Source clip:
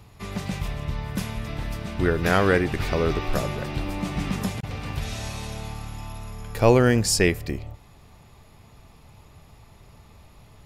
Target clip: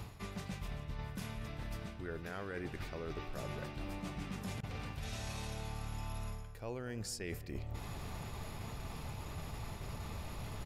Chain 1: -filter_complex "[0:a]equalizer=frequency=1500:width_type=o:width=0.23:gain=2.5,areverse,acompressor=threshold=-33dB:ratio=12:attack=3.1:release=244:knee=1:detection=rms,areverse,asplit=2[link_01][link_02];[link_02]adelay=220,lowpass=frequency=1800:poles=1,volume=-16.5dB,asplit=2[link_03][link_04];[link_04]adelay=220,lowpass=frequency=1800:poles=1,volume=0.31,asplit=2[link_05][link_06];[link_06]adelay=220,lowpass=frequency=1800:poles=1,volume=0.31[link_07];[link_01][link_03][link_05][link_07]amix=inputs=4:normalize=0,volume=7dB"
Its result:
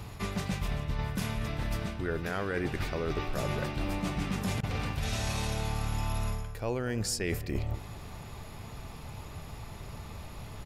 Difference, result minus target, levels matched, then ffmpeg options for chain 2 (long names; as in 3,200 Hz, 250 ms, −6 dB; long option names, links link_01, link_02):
downward compressor: peak gain reduction −10 dB
-filter_complex "[0:a]equalizer=frequency=1500:width_type=o:width=0.23:gain=2.5,areverse,acompressor=threshold=-44dB:ratio=12:attack=3.1:release=244:knee=1:detection=rms,areverse,asplit=2[link_01][link_02];[link_02]adelay=220,lowpass=frequency=1800:poles=1,volume=-16.5dB,asplit=2[link_03][link_04];[link_04]adelay=220,lowpass=frequency=1800:poles=1,volume=0.31,asplit=2[link_05][link_06];[link_06]adelay=220,lowpass=frequency=1800:poles=1,volume=0.31[link_07];[link_01][link_03][link_05][link_07]amix=inputs=4:normalize=0,volume=7dB"